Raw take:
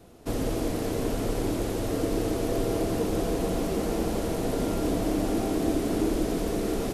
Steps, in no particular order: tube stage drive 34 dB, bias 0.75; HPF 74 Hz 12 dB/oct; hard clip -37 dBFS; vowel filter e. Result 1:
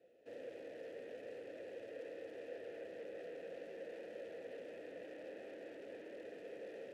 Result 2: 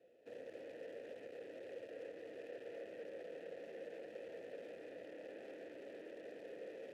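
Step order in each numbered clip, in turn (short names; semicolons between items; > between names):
HPF > tube stage > hard clip > vowel filter; tube stage > HPF > hard clip > vowel filter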